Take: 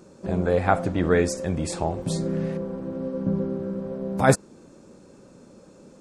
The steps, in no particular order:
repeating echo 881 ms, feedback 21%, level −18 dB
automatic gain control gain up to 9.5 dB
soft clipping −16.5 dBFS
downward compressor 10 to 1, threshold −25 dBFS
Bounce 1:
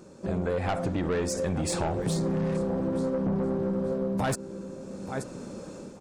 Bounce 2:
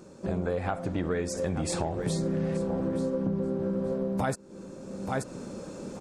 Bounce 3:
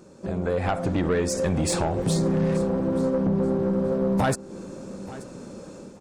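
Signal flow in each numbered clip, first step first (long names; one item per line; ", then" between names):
automatic gain control, then repeating echo, then soft clipping, then downward compressor
repeating echo, then automatic gain control, then downward compressor, then soft clipping
downward compressor, then automatic gain control, then soft clipping, then repeating echo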